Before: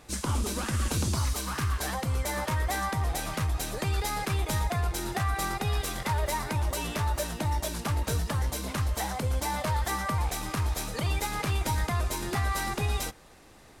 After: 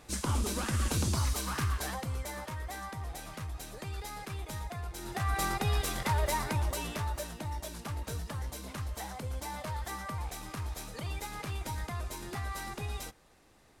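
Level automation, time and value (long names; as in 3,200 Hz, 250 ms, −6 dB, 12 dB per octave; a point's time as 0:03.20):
0:01.62 −2 dB
0:02.54 −11 dB
0:04.93 −11 dB
0:05.36 −1 dB
0:06.43 −1 dB
0:07.43 −9 dB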